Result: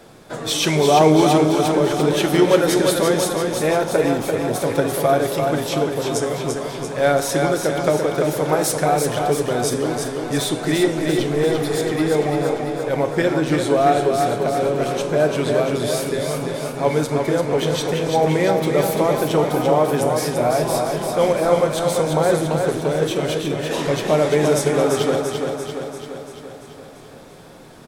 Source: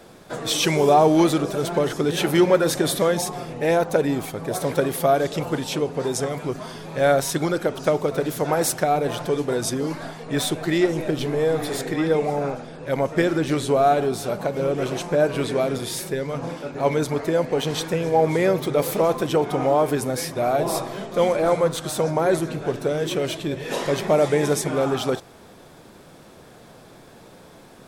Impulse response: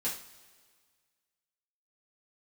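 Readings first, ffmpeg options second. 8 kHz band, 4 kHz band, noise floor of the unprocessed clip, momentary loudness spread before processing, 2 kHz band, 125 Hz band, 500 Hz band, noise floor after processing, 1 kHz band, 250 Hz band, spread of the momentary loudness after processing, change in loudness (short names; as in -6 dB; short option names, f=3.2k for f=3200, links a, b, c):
+3.5 dB, +3.5 dB, -47 dBFS, 8 LU, +3.5 dB, +4.0 dB, +3.5 dB, -40 dBFS, +3.0 dB, +3.5 dB, 7 LU, +3.0 dB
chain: -filter_complex "[0:a]aecho=1:1:341|682|1023|1364|1705|2046|2387|2728:0.562|0.337|0.202|0.121|0.0729|0.0437|0.0262|0.0157,asplit=2[a][b];[1:a]atrim=start_sample=2205,asetrate=22932,aresample=44100[c];[b][c]afir=irnorm=-1:irlink=0,volume=-16dB[d];[a][d]amix=inputs=2:normalize=0"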